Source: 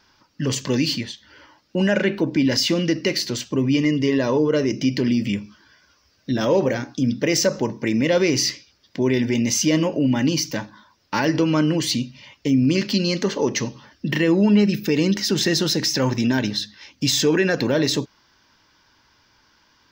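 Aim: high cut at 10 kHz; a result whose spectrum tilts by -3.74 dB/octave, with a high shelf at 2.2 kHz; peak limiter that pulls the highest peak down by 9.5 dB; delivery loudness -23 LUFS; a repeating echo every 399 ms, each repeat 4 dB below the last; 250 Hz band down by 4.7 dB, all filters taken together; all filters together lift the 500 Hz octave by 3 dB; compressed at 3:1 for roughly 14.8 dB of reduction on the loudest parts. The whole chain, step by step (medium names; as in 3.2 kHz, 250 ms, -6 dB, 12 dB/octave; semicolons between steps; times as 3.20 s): low-pass 10 kHz; peaking EQ 250 Hz -8.5 dB; peaking EQ 500 Hz +6 dB; treble shelf 2.2 kHz +5.5 dB; compression 3:1, threshold -32 dBFS; peak limiter -23 dBFS; feedback delay 399 ms, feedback 63%, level -4 dB; trim +9 dB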